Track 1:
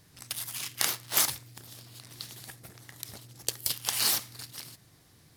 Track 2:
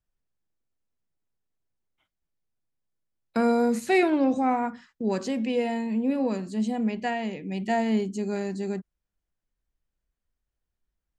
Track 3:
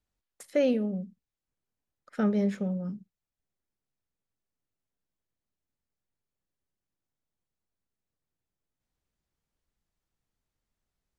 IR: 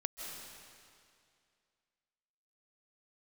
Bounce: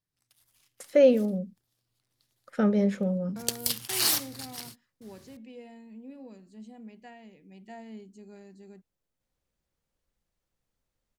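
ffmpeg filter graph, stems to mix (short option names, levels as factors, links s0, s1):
-filter_complex "[0:a]volume=1.19[s0];[1:a]adynamicequalizer=threshold=0.01:dfrequency=1100:dqfactor=0.89:tfrequency=1100:tqfactor=0.89:attack=5:release=100:ratio=0.375:range=3.5:mode=cutabove:tftype=bell,volume=0.106,asplit=2[s1][s2];[2:a]equalizer=f=530:t=o:w=0.23:g=7.5,adelay=400,volume=1.26[s3];[s2]apad=whole_len=236674[s4];[s0][s4]sidechaingate=range=0.0251:threshold=0.00224:ratio=16:detection=peak[s5];[s5][s1][s3]amix=inputs=3:normalize=0"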